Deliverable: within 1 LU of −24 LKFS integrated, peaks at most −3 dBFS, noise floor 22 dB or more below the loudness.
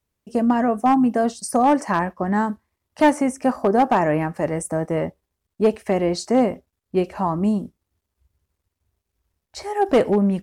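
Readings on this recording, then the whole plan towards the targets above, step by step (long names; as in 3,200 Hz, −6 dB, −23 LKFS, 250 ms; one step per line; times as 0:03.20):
share of clipped samples 1.0%; peaks flattened at −10.0 dBFS; integrated loudness −21.0 LKFS; sample peak −10.0 dBFS; target loudness −24.0 LKFS
→ clipped peaks rebuilt −10 dBFS
level −3 dB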